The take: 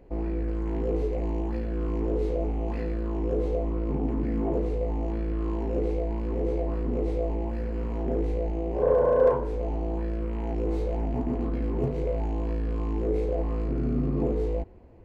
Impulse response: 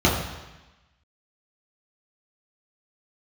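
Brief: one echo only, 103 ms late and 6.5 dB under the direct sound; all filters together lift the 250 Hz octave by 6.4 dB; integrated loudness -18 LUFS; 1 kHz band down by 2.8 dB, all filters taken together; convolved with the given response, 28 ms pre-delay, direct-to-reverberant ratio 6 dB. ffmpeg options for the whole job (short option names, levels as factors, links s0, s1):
-filter_complex "[0:a]equalizer=f=250:t=o:g=8.5,equalizer=f=1000:t=o:g=-4.5,aecho=1:1:103:0.473,asplit=2[s0][s1];[1:a]atrim=start_sample=2205,adelay=28[s2];[s1][s2]afir=irnorm=-1:irlink=0,volume=0.0531[s3];[s0][s3]amix=inputs=2:normalize=0,volume=1.5"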